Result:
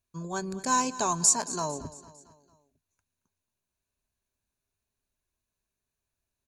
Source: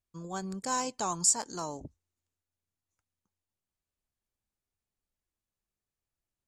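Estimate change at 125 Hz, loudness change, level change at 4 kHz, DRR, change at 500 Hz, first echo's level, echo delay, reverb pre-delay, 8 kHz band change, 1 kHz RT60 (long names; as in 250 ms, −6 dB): +4.5 dB, +4.0 dB, +3.0 dB, no reverb audible, +4.5 dB, −17.0 dB, 226 ms, no reverb audible, +4.0 dB, no reverb audible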